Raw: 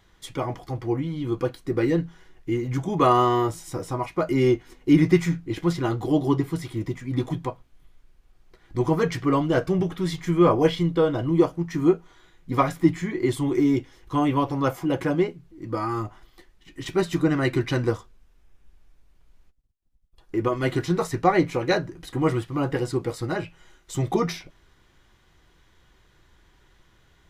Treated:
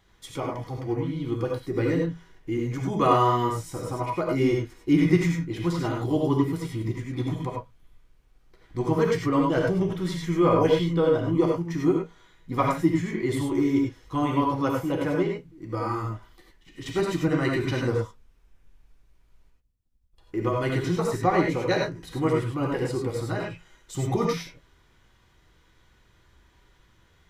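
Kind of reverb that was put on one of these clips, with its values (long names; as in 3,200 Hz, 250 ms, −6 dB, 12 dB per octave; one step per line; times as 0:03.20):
reverb whose tail is shaped and stops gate 120 ms rising, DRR 0 dB
level −4 dB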